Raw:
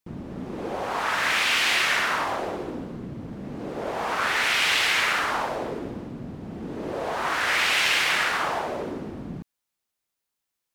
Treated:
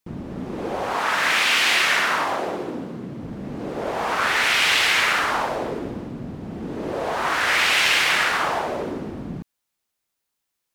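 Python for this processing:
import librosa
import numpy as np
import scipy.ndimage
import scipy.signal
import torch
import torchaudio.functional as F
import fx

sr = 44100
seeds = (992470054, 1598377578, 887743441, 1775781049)

y = fx.highpass(x, sr, hz=130.0, slope=12, at=(0.94, 3.22))
y = y * 10.0 ** (3.5 / 20.0)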